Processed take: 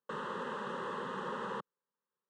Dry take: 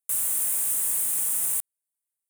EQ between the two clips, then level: distance through air 110 m; cabinet simulation 210–2500 Hz, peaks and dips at 720 Hz -8 dB, 1.4 kHz -6 dB, 2.2 kHz -8 dB; static phaser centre 460 Hz, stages 8; +17.0 dB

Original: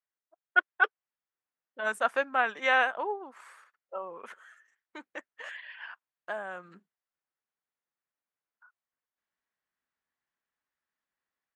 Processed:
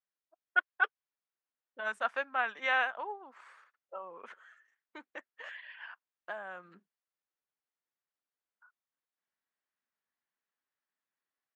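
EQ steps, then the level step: high-pass 160 Hz; low-pass 5.1 kHz 12 dB/octave; dynamic bell 340 Hz, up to -8 dB, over -45 dBFS, Q 0.84; -3.5 dB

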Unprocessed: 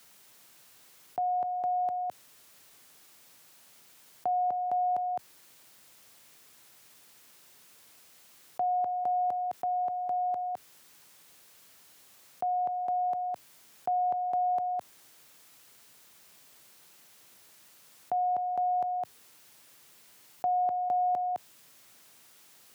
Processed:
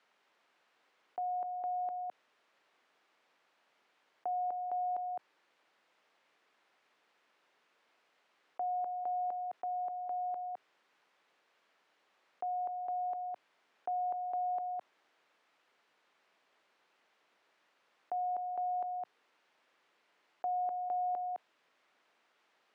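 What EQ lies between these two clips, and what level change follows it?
band-pass 370–2300 Hz; -6.5 dB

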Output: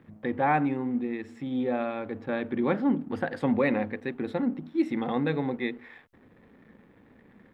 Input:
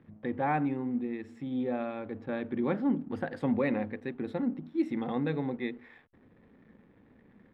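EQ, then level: bass shelf 460 Hz -4.5 dB; +6.5 dB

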